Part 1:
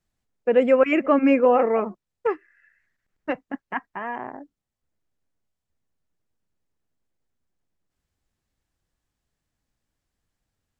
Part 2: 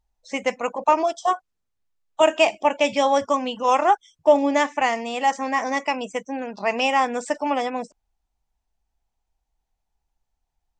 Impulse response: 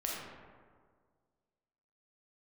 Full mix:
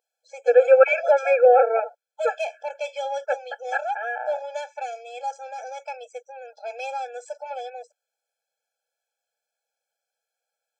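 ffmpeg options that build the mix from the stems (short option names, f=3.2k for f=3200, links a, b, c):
-filter_complex "[0:a]adynamicequalizer=threshold=0.0158:dfrequency=1300:dqfactor=1.1:tfrequency=1300:tqfactor=1.1:attack=5:release=100:ratio=0.375:range=3:mode=boostabove:tftype=bell,volume=2.5dB[a];[1:a]asoftclip=type=tanh:threshold=-11.5dB,volume=-7.5dB[b];[a][b]amix=inputs=2:normalize=0,highpass=91,aeval=exprs='val(0)+0.00251*(sin(2*PI*50*n/s)+sin(2*PI*2*50*n/s)/2+sin(2*PI*3*50*n/s)/3+sin(2*PI*4*50*n/s)/4+sin(2*PI*5*50*n/s)/5)':c=same,afftfilt=real='re*eq(mod(floor(b*sr/1024/440),2),1)':imag='im*eq(mod(floor(b*sr/1024/440),2),1)':win_size=1024:overlap=0.75"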